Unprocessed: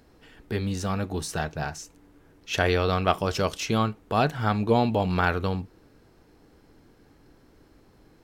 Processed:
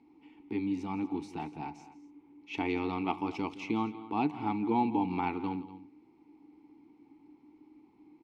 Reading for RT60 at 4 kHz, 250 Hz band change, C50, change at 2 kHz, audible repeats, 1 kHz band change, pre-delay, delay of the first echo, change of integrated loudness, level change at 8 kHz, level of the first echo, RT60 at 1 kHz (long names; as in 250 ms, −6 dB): no reverb audible, −2.5 dB, no reverb audible, −12.5 dB, 2, −6.5 dB, no reverb audible, 167 ms, −7.5 dB, below −20 dB, −16.5 dB, no reverb audible